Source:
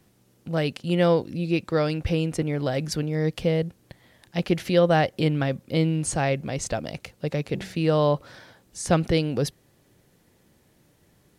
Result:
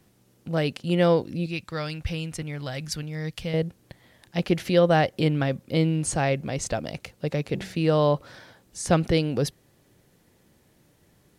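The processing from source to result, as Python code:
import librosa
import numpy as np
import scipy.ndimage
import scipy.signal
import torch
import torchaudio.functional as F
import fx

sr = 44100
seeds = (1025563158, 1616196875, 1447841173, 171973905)

y = fx.peak_eq(x, sr, hz=390.0, db=-12.0, octaves=2.4, at=(1.46, 3.54))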